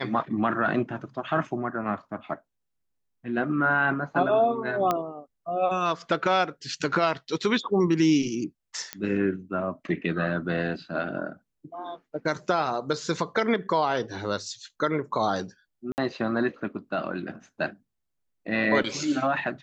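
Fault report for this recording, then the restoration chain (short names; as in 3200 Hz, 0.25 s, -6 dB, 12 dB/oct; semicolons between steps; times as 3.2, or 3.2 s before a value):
4.91 pop -11 dBFS
8.93 pop -14 dBFS
15.92–15.98 gap 59 ms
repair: de-click; interpolate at 15.92, 59 ms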